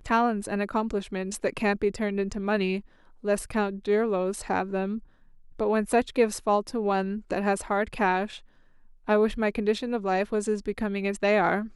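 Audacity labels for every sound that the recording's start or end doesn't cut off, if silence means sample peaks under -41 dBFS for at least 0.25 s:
3.240000	5.030000	sound
5.590000	8.390000	sound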